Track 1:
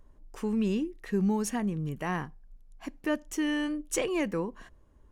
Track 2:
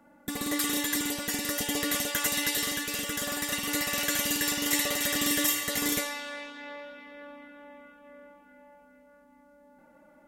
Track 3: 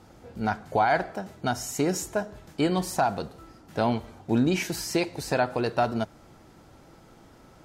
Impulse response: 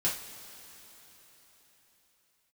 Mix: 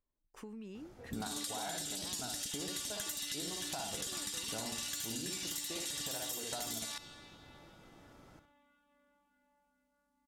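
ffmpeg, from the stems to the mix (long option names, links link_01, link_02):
-filter_complex "[0:a]agate=range=-19dB:threshold=-45dB:ratio=16:detection=peak,lowshelf=frequency=130:gain=-9.5,acompressor=threshold=-39dB:ratio=5,volume=-7dB[link_01];[1:a]equalizer=frequency=250:width_type=o:width=1:gain=-4,equalizer=frequency=500:width_type=o:width=1:gain=-12,equalizer=frequency=2000:width_type=o:width=1:gain=-8,equalizer=frequency=4000:width_type=o:width=1:gain=6,equalizer=frequency=8000:width_type=o:width=1:gain=4,afwtdn=0.0126,adelay=850,volume=2.5dB[link_02];[2:a]adelay=750,volume=-7dB,asplit=2[link_03][link_04];[link_04]volume=-10.5dB[link_05];[link_02][link_03]amix=inputs=2:normalize=0,acompressor=threshold=-30dB:ratio=6,volume=0dB[link_06];[link_05]aecho=0:1:62|124|186|248|310:1|0.34|0.116|0.0393|0.0134[link_07];[link_01][link_06][link_07]amix=inputs=3:normalize=0,acompressor=threshold=-37dB:ratio=6"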